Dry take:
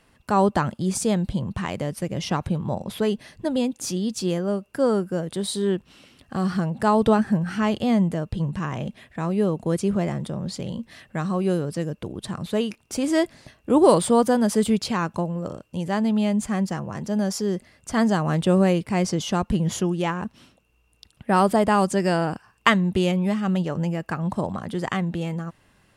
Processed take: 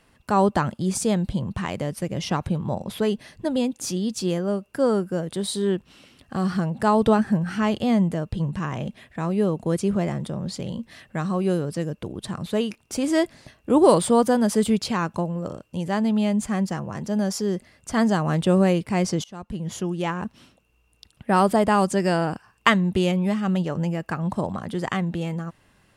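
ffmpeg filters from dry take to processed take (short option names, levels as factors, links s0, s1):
-filter_complex "[0:a]asplit=2[s0][s1];[s0]atrim=end=19.24,asetpts=PTS-STARTPTS,afade=t=out:st=19.236:d=0.004:c=hsin:silence=0.0630957[s2];[s1]atrim=start=19.24,asetpts=PTS-STARTPTS,afade=t=in:d=0.98:silence=0.0630957[s3];[s2][s3]concat=n=2:v=0:a=1"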